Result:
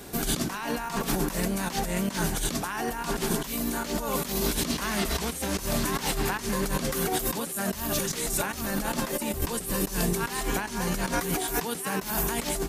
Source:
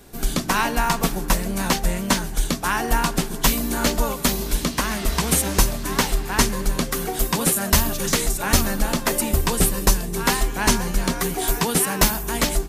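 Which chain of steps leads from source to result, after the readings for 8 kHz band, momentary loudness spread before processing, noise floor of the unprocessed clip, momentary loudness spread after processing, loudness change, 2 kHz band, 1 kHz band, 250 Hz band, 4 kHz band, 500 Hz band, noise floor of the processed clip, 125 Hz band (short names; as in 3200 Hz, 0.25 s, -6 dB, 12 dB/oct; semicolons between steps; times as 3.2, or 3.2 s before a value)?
-8.0 dB, 5 LU, -30 dBFS, 3 LU, -7.0 dB, -7.0 dB, -7.0 dB, -5.0 dB, -7.5 dB, -4.5 dB, -37 dBFS, -7.5 dB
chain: HPF 94 Hz 6 dB/oct; negative-ratio compressor -30 dBFS, ratio -1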